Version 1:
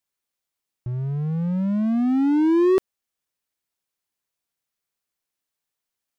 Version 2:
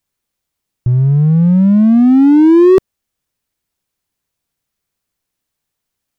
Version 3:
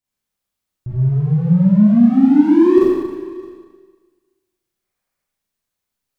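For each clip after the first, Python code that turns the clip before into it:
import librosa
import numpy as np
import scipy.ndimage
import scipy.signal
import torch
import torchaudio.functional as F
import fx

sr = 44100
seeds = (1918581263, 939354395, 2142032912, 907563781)

y1 = fx.low_shelf(x, sr, hz=240.0, db=11.5)
y1 = F.gain(torch.from_numpy(y1), 7.0).numpy()
y2 = fx.spec_box(y1, sr, start_s=4.78, length_s=0.43, low_hz=440.0, high_hz=2500.0, gain_db=6)
y2 = y2 + 10.0 ** (-20.5 / 20.0) * np.pad(y2, (int(615 * sr / 1000.0), 0))[:len(y2)]
y2 = fx.rev_schroeder(y2, sr, rt60_s=1.4, comb_ms=30, drr_db=-9.0)
y2 = F.gain(torch.from_numpy(y2), -13.0).numpy()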